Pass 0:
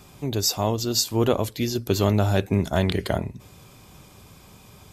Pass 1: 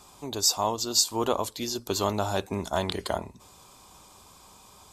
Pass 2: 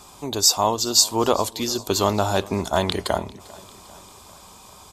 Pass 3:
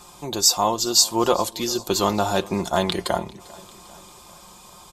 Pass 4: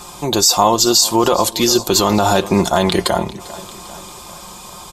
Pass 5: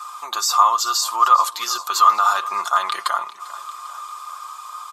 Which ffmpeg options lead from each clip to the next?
ffmpeg -i in.wav -af "equalizer=frequency=125:width_type=o:width=1:gain=-9,equalizer=frequency=1000:width_type=o:width=1:gain=11,equalizer=frequency=2000:width_type=o:width=1:gain=-4,equalizer=frequency=4000:width_type=o:width=1:gain=5,equalizer=frequency=8000:width_type=o:width=1:gain=9,volume=-7dB" out.wav
ffmpeg -i in.wav -af "aecho=1:1:397|794|1191|1588:0.0794|0.0469|0.0277|0.0163,volume=6.5dB" out.wav
ffmpeg -i in.wav -af "aecho=1:1:5.7:0.5,volume=-1dB" out.wav
ffmpeg -i in.wav -af "alimiter=level_in=12dB:limit=-1dB:release=50:level=0:latency=1,volume=-1dB" out.wav
ffmpeg -i in.wav -af "highpass=frequency=1200:width_type=q:width=15,volume=-9dB" out.wav

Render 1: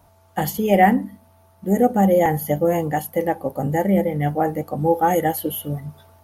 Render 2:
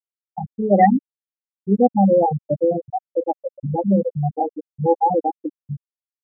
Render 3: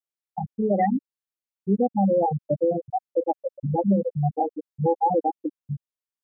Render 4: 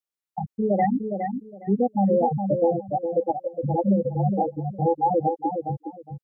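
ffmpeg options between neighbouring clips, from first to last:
ffmpeg -i in.wav -af "afftfilt=real='re*gte(hypot(re,im),0.631)':imag='im*gte(hypot(re,im),0.631)':win_size=1024:overlap=0.75,volume=1.5dB" out.wav
ffmpeg -i in.wav -af "alimiter=limit=-11.5dB:level=0:latency=1:release=308,volume=-1.5dB" out.wav
ffmpeg -i in.wav -af "aecho=1:1:412|824|1236:0.473|0.0946|0.0189" out.wav

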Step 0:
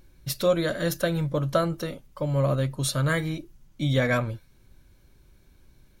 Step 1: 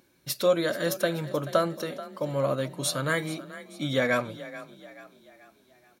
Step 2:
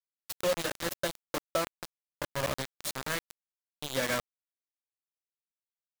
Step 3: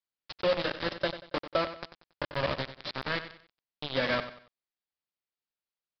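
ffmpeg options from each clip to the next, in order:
ffmpeg -i in.wav -filter_complex "[0:a]highpass=230,asplit=5[link_01][link_02][link_03][link_04][link_05];[link_02]adelay=433,afreqshift=30,volume=-15.5dB[link_06];[link_03]adelay=866,afreqshift=60,volume=-22.4dB[link_07];[link_04]adelay=1299,afreqshift=90,volume=-29.4dB[link_08];[link_05]adelay=1732,afreqshift=120,volume=-36.3dB[link_09];[link_01][link_06][link_07][link_08][link_09]amix=inputs=5:normalize=0" out.wav
ffmpeg -i in.wav -af "aeval=exprs='sgn(val(0))*max(abs(val(0))-0.00266,0)':channel_layout=same,acrusher=bits=3:mix=0:aa=0.000001,volume=-7dB" out.wav
ffmpeg -i in.wav -af "aecho=1:1:93|186|279:0.251|0.0829|0.0274,aresample=11025,aresample=44100,volume=2dB" out.wav

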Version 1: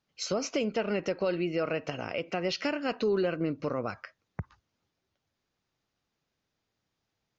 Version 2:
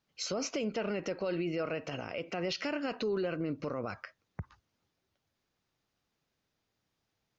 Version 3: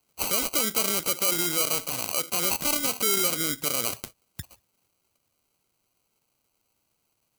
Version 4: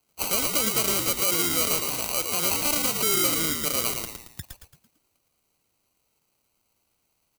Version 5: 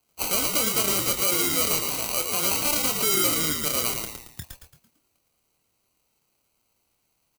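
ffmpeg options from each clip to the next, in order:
ffmpeg -i in.wav -af "alimiter=level_in=1.5dB:limit=-24dB:level=0:latency=1:release=35,volume=-1.5dB" out.wav
ffmpeg -i in.wav -af "acrusher=samples=25:mix=1:aa=0.000001,crystalizer=i=8.5:c=0" out.wav
ffmpeg -i in.wav -filter_complex "[0:a]asplit=6[link_01][link_02][link_03][link_04][link_05][link_06];[link_02]adelay=112,afreqshift=-80,volume=-4.5dB[link_07];[link_03]adelay=224,afreqshift=-160,volume=-12dB[link_08];[link_04]adelay=336,afreqshift=-240,volume=-19.6dB[link_09];[link_05]adelay=448,afreqshift=-320,volume=-27.1dB[link_10];[link_06]adelay=560,afreqshift=-400,volume=-34.6dB[link_11];[link_01][link_07][link_08][link_09][link_10][link_11]amix=inputs=6:normalize=0" out.wav
ffmpeg -i in.wav -filter_complex "[0:a]asplit=2[link_01][link_02];[link_02]adelay=26,volume=-8dB[link_03];[link_01][link_03]amix=inputs=2:normalize=0" out.wav

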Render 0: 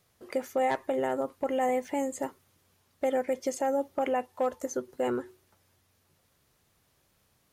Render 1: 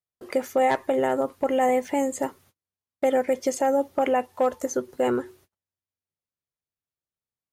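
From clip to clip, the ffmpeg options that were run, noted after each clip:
ffmpeg -i in.wav -af "agate=range=-35dB:threshold=-59dB:ratio=16:detection=peak,volume=6dB" out.wav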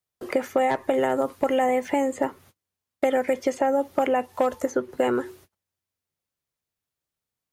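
ffmpeg -i in.wav -filter_complex "[0:a]acrossover=split=250|1000|3000[link_01][link_02][link_03][link_04];[link_01]acompressor=threshold=-42dB:ratio=4[link_05];[link_02]acompressor=threshold=-29dB:ratio=4[link_06];[link_03]acompressor=threshold=-37dB:ratio=4[link_07];[link_04]acompressor=threshold=-53dB:ratio=4[link_08];[link_05][link_06][link_07][link_08]amix=inputs=4:normalize=0,volume=6.5dB" out.wav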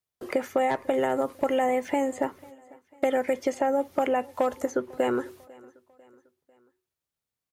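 ffmpeg -i in.wav -af "aecho=1:1:497|994|1491:0.0631|0.0303|0.0145,volume=-2.5dB" out.wav

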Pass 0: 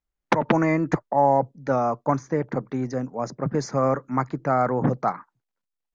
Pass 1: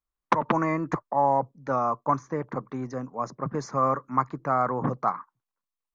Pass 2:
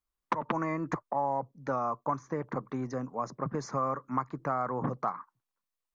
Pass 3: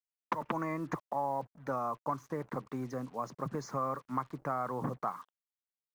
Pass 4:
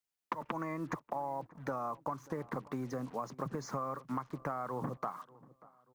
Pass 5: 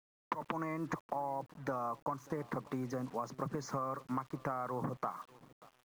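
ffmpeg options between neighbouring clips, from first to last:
ffmpeg -i in.wav -af "equalizer=frequency=1100:width=3.3:gain=12,bandreject=frequency=4800:width=26,volume=-6dB" out.wav
ffmpeg -i in.wav -af "acompressor=threshold=-30dB:ratio=2.5" out.wav
ffmpeg -i in.wav -af "acrusher=bits=8:mix=0:aa=0.5,volume=-3.5dB" out.wav
ffmpeg -i in.wav -filter_complex "[0:a]acompressor=threshold=-39dB:ratio=5,asplit=2[link_01][link_02];[link_02]adelay=588,lowpass=frequency=1700:poles=1,volume=-21dB,asplit=2[link_03][link_04];[link_04]adelay=588,lowpass=frequency=1700:poles=1,volume=0.46,asplit=2[link_05][link_06];[link_06]adelay=588,lowpass=frequency=1700:poles=1,volume=0.46[link_07];[link_01][link_03][link_05][link_07]amix=inputs=4:normalize=0,volume=4.5dB" out.wav
ffmpeg -i in.wav -af "aeval=exprs='val(0)*gte(abs(val(0)),0.00112)':channel_layout=same" out.wav

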